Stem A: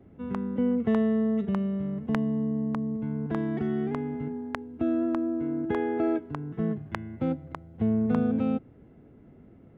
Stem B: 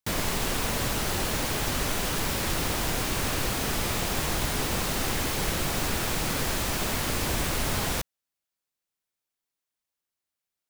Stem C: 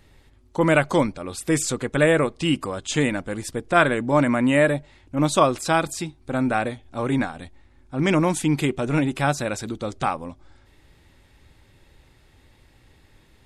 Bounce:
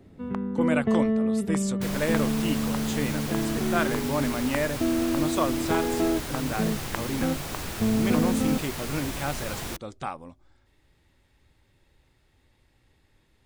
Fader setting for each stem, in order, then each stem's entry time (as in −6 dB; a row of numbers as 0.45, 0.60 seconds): +1.0, −6.5, −9.5 decibels; 0.00, 1.75, 0.00 seconds